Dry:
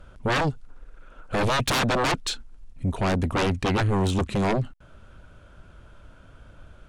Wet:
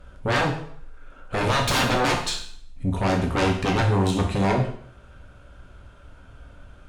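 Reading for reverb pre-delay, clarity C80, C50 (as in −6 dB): 5 ms, 10.5 dB, 7.0 dB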